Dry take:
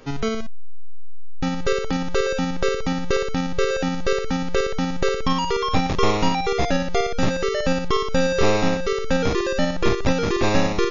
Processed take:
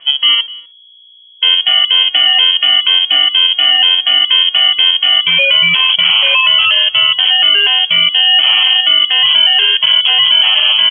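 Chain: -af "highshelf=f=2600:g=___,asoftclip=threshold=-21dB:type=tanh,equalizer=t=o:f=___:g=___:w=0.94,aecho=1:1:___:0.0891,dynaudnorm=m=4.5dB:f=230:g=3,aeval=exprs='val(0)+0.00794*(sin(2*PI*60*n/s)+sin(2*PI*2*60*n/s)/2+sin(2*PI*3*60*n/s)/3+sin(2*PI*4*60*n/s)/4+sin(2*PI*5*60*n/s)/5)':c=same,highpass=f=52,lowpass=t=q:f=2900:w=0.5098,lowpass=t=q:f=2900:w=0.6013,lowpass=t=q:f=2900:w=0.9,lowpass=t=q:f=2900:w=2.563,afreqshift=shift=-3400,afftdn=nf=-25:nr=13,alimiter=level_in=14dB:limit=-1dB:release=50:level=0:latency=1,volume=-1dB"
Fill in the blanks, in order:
10.5, 350, 10.5, 250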